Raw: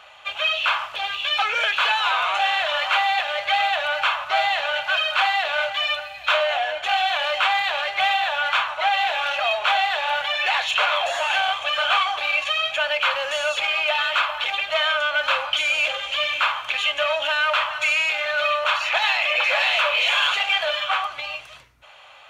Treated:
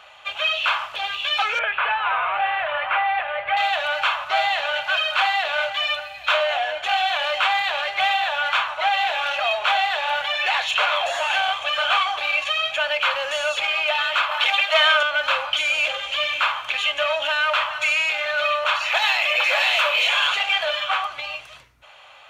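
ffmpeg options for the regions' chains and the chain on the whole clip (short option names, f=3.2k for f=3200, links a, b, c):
-filter_complex "[0:a]asettb=1/sr,asplit=3[a][b][c];[a]atrim=end=1.594[d];[b]atrim=start=1.59:end=3.57,asetpts=PTS-STARTPTS,afade=t=in:d=0.004:c=qsin,afade=t=out:st=1.976:d=0.004:c=qsin,lowpass=f=2.4k:w=0.5412,lowpass=f=2.4k:w=1.3066,equalizer=f=88:t=o:w=1:g=6[e];[c]atrim=start=3.566[f];[d][e]acrossfade=d=0.004:c1=hsin:c2=qsin[g];[g][f]acrossfade=d=0.004:c1=qsin:c2=hsin,asettb=1/sr,asplit=3[h][i][j];[h]atrim=end=14.314[k];[i]atrim=start=14.31:end=15.03,asetpts=PTS-STARTPTS,afade=t=in:d=0.004:c=qsin,afade=t=out:st=0.716:d=0.004:c=qsin,highpass=530,acontrast=38[l];[j]atrim=start=15.026[m];[k][l]acrossfade=d=0.004:c1=hsin:c2=qsin[n];[n][m]acrossfade=d=0.004:c1=qsin:c2=hsin,asettb=1/sr,asplit=3[o][p][q];[o]atrim=end=18.894[r];[p]atrim=start=18.89:end=20.07,asetpts=PTS-STARTPTS,afade=t=in:d=0.004:c=qsin,afade=t=out:st=1.176:d=0.004:c=qsin,highpass=f=200:w=0.5412,highpass=f=200:w=1.3066,highshelf=f=7.5k:g=9[s];[q]atrim=start=20.066[t];[r][s]acrossfade=d=0.004:c1=hsin:c2=qsin[u];[u][t]acrossfade=d=0.004:c1=qsin:c2=hsin"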